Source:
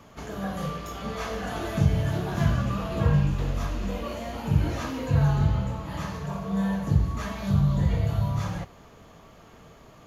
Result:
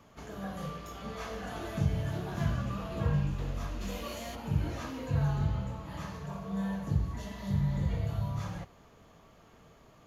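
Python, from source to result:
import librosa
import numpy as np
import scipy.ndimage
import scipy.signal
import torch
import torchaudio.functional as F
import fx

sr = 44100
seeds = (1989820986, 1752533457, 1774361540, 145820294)

y = fx.high_shelf(x, sr, hz=2700.0, db=12.0, at=(3.8, 4.34), fade=0.02)
y = fx.spec_repair(y, sr, seeds[0], start_s=7.16, length_s=0.65, low_hz=660.0, high_hz=2600.0, source='after')
y = F.gain(torch.from_numpy(y), -7.5).numpy()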